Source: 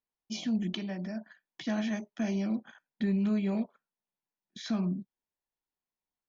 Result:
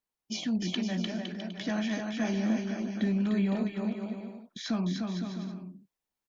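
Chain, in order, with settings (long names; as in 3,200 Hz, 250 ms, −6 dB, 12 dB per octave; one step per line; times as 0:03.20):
bouncing-ball delay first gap 300 ms, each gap 0.7×, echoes 5
harmonic and percussive parts rebalanced percussive +4 dB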